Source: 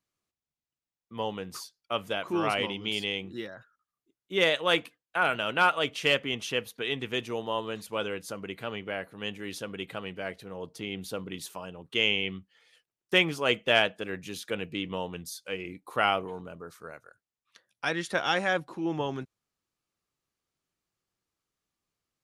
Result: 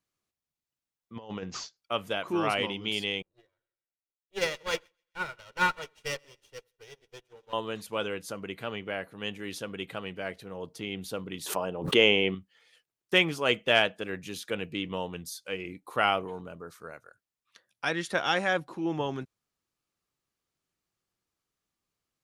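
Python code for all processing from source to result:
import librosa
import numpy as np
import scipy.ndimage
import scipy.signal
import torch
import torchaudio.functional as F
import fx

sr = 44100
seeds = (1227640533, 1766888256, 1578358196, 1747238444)

y = fx.chain(x, sr, fx.peak_eq(hz=3400.0, db=-3.5, octaves=0.66),
    fx.over_compress(threshold_db=-37.0, ratio=-0.5),
    fx.resample_bad(factor=3, down='none', up='filtered'), at=(1.16, 1.77))
y = fx.chain(y, sr, fx.lower_of_two(delay_ms=2.1),
    fx.echo_split(split_hz=1600.0, low_ms=84, high_ms=132, feedback_pct=52, wet_db=-13.5),
    fx.upward_expand(threshold_db=-45.0, expansion=2.5), at=(3.22, 7.53))
y = fx.chain(y, sr, fx.peak_eq(hz=530.0, db=10.5, octaves=2.9),
    fx.pre_swell(db_per_s=96.0), at=(11.46, 12.35))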